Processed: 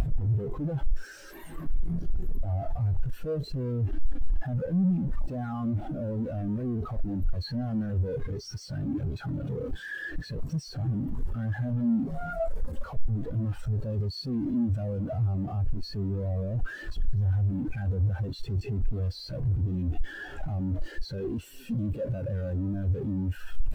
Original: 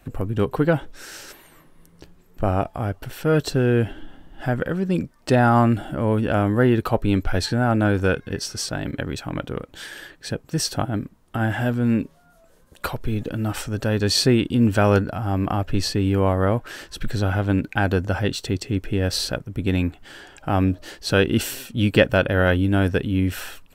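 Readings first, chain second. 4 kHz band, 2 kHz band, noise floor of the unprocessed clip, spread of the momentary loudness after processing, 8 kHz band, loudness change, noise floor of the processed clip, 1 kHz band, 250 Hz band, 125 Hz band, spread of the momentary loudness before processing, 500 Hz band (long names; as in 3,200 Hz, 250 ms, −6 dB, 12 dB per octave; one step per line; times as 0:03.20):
−16.5 dB, −16.0 dB, −54 dBFS, 9 LU, below −20 dB, −9.5 dB, −44 dBFS, −17.5 dB, −9.0 dB, −5.5 dB, 12 LU, −14.0 dB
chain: sign of each sample alone
background noise white −34 dBFS
every bin expanded away from the loudest bin 2.5 to 1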